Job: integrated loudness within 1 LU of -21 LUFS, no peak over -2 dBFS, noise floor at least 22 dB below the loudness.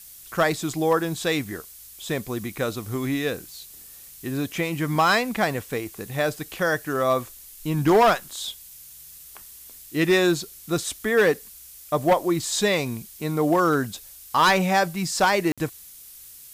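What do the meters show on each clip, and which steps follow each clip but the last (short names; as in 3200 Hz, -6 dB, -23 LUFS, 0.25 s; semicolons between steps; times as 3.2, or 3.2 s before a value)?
dropouts 1; longest dropout 56 ms; noise floor -45 dBFS; noise floor target -46 dBFS; loudness -23.5 LUFS; peak -11.0 dBFS; loudness target -21.0 LUFS
-> interpolate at 15.52, 56 ms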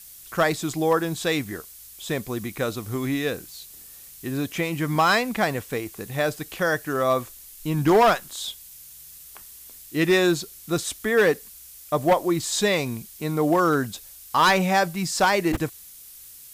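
dropouts 0; noise floor -45 dBFS; noise floor target -46 dBFS
-> noise print and reduce 6 dB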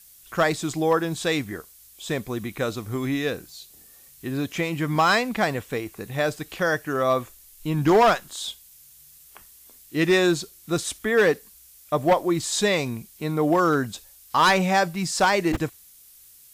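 noise floor -51 dBFS; loudness -23.5 LUFS; peak -11.0 dBFS; loudness target -21.0 LUFS
-> gain +2.5 dB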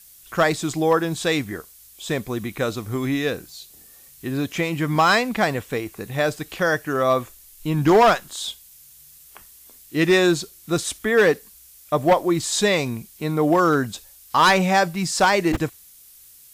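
loudness -21.0 LUFS; peak -8.5 dBFS; noise floor -49 dBFS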